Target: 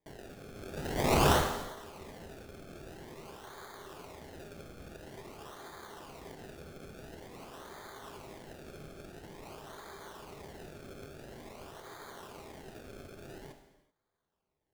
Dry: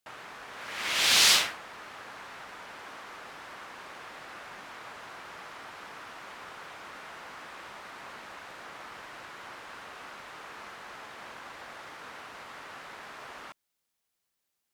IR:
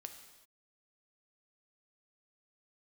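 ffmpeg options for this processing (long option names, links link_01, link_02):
-filter_complex "[0:a]equalizer=frequency=400:width=6.3:gain=12.5,bandreject=frequency=1300:width=17,acrusher=samples=31:mix=1:aa=0.000001:lfo=1:lforange=31:lforate=0.48[link_01];[1:a]atrim=start_sample=2205[link_02];[link_01][link_02]afir=irnorm=-1:irlink=0,volume=1dB"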